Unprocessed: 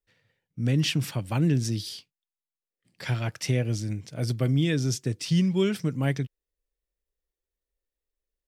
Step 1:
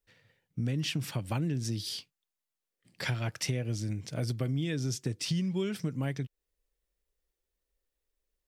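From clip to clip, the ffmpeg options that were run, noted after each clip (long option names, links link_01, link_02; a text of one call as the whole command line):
ffmpeg -i in.wav -af "acompressor=threshold=-34dB:ratio=4,volume=3.5dB" out.wav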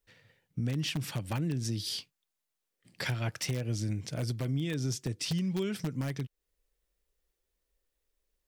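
ffmpeg -i in.wav -filter_complex "[0:a]asplit=2[link_01][link_02];[link_02]aeval=exprs='(mod(14.1*val(0)+1,2)-1)/14.1':channel_layout=same,volume=-8dB[link_03];[link_01][link_03]amix=inputs=2:normalize=0,alimiter=limit=-24dB:level=0:latency=1:release=339" out.wav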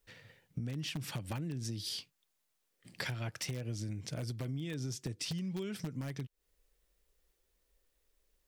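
ffmpeg -i in.wav -af "acompressor=threshold=-43dB:ratio=4,volume=5dB" out.wav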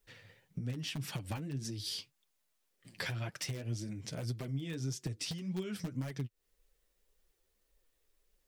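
ffmpeg -i in.wav -af "flanger=delay=4.4:depth=7.3:regen=23:speed=1.8:shape=triangular,volume=3.5dB" out.wav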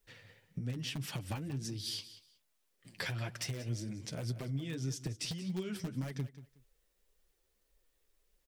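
ffmpeg -i in.wav -af "aecho=1:1:184|368:0.178|0.0373" out.wav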